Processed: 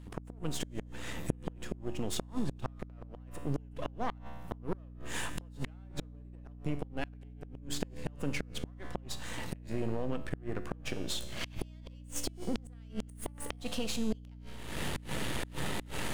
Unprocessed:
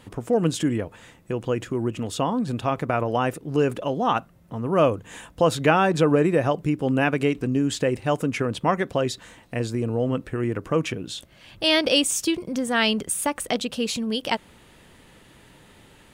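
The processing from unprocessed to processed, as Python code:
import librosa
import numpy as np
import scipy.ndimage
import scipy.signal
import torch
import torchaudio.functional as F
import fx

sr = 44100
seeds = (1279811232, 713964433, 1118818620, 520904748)

y = np.where(x < 0.0, 10.0 ** (-12.0 / 20.0) * x, x)
y = fx.recorder_agc(y, sr, target_db=-13.0, rise_db_per_s=66.0, max_gain_db=30)
y = fx.comb_fb(y, sr, f0_hz=72.0, decay_s=1.4, harmonics='all', damping=0.0, mix_pct=70)
y = fx.gate_flip(y, sr, shuts_db=-18.0, range_db=-34)
y = fx.add_hum(y, sr, base_hz=60, snr_db=12)
y = y * 10.0 ** (-2.5 / 20.0)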